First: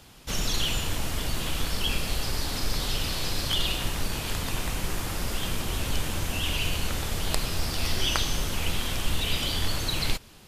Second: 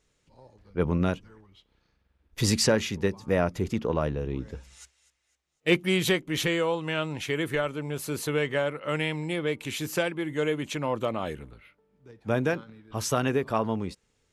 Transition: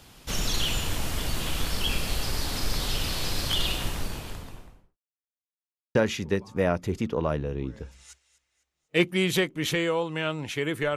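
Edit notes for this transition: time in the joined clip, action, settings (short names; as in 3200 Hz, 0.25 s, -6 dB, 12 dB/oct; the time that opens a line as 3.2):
first
3.64–4.98 studio fade out
4.98–5.95 mute
5.95 switch to second from 2.67 s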